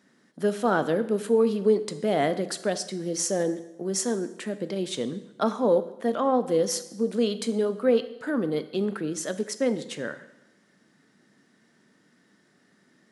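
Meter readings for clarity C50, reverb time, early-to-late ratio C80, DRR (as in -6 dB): 14.0 dB, 0.95 s, 16.0 dB, 11.5 dB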